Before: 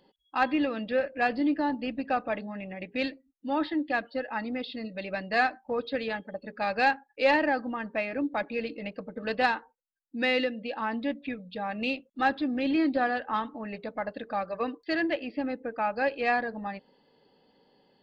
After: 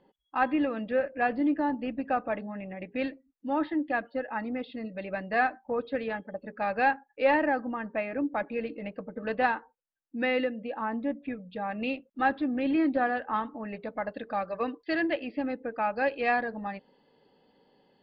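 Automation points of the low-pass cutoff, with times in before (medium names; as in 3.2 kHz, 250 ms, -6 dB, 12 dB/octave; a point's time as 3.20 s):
10.32 s 2.1 kHz
11.12 s 1.3 kHz
11.52 s 2.4 kHz
13.60 s 2.4 kHz
14.22 s 3.9 kHz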